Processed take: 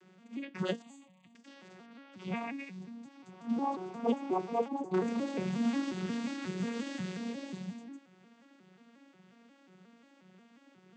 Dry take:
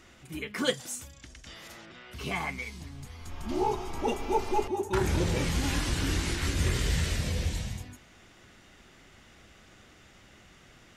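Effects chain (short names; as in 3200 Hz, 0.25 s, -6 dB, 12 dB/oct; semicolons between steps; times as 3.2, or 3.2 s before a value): arpeggiated vocoder major triad, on F#3, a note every 0.179 s; 0.82–1.35 fixed phaser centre 1500 Hz, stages 6; gain -2.5 dB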